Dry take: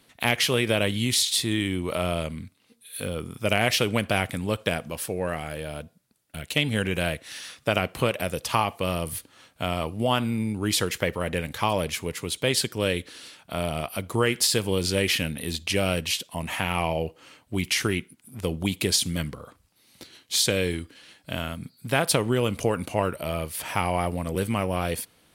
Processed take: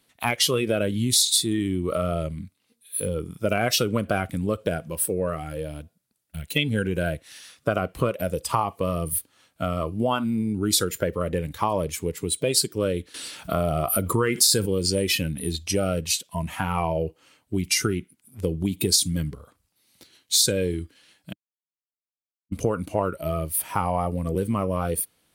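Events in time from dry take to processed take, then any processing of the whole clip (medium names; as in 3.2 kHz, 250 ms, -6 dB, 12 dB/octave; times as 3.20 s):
13.14–14.66 s: level flattener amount 50%
21.33–22.52 s: mute
whole clip: spectral noise reduction 14 dB; compression 2:1, threshold -29 dBFS; treble shelf 5.4 kHz +5.5 dB; trim +6 dB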